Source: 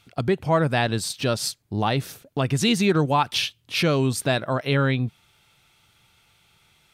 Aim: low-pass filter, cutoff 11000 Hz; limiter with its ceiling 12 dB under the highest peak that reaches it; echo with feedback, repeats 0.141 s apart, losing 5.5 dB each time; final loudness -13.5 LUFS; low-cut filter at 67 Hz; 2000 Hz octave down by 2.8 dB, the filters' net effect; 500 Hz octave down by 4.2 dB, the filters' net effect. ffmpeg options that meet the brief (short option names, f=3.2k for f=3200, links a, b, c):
-af "highpass=67,lowpass=11k,equalizer=f=500:t=o:g=-5.5,equalizer=f=2k:t=o:g=-3.5,alimiter=limit=-21dB:level=0:latency=1,aecho=1:1:141|282|423|564|705|846|987:0.531|0.281|0.149|0.079|0.0419|0.0222|0.0118,volume=15.5dB"